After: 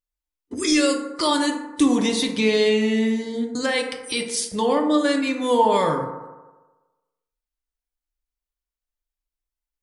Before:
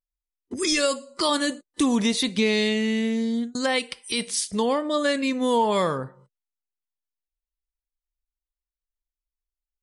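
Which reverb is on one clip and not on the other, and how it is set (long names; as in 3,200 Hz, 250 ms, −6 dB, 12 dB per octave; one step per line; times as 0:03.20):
feedback delay network reverb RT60 1.2 s, low-frequency decay 0.85×, high-frequency decay 0.35×, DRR 2.5 dB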